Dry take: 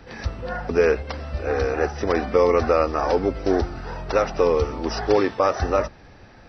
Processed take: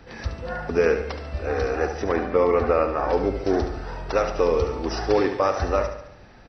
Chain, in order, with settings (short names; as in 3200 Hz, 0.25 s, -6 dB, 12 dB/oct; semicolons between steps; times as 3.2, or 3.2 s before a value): 2.04–3.13 LPF 3000 Hz 12 dB/oct; feedback echo 71 ms, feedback 51%, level -9 dB; gain -2 dB